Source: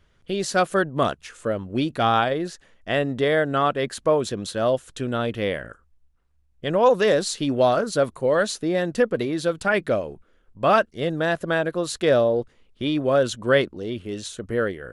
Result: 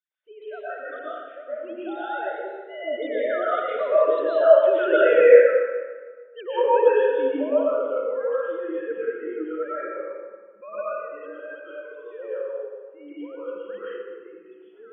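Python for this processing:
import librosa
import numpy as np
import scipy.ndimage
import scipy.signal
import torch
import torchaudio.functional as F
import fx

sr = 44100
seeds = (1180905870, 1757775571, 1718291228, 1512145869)

y = fx.sine_speech(x, sr)
y = fx.doppler_pass(y, sr, speed_mps=23, closest_m=7.0, pass_at_s=5.06)
y = fx.rev_freeverb(y, sr, rt60_s=1.5, hf_ratio=0.65, predelay_ms=80, drr_db=-9.5)
y = y * 10.0 ** (4.5 / 20.0)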